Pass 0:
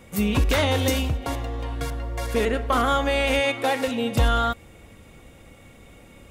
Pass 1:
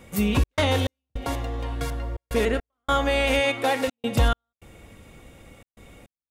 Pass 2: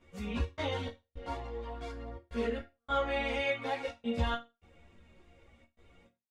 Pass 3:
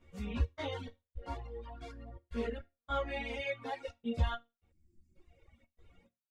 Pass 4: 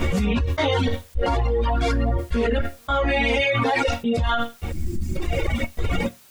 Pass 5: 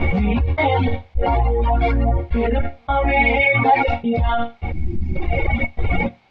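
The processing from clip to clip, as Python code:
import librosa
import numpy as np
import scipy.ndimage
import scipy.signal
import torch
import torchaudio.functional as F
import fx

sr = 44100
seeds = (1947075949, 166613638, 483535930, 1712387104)

y1 = fx.step_gate(x, sr, bpm=104, pattern='xxx.xx..xxxx', floor_db=-60.0, edge_ms=4.5)
y2 = scipy.signal.sosfilt(scipy.signal.butter(2, 5100.0, 'lowpass', fs=sr, output='sos'), y1)
y2 = fx.resonator_bank(y2, sr, root=39, chord='minor', decay_s=0.24)
y2 = fx.chorus_voices(y2, sr, voices=4, hz=0.42, base_ms=14, depth_ms=3.0, mix_pct=65)
y3 = fx.dereverb_blind(y2, sr, rt60_s=1.7)
y3 = fx.spec_box(y3, sr, start_s=4.72, length_s=0.44, low_hz=370.0, high_hz=4400.0, gain_db=-24)
y3 = fx.low_shelf(y3, sr, hz=140.0, db=8.0)
y3 = y3 * librosa.db_to_amplitude(-4.0)
y4 = fx.env_flatten(y3, sr, amount_pct=100)
y4 = y4 * librosa.db_to_amplitude(4.5)
y5 = scipy.signal.sosfilt(scipy.signal.butter(4, 3900.0, 'lowpass', fs=sr, output='sos'), y4)
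y5 = fx.low_shelf(y5, sr, hz=430.0, db=9.0)
y5 = fx.small_body(y5, sr, hz=(790.0, 2200.0), ring_ms=20, db=14)
y5 = y5 * librosa.db_to_amplitude(-4.5)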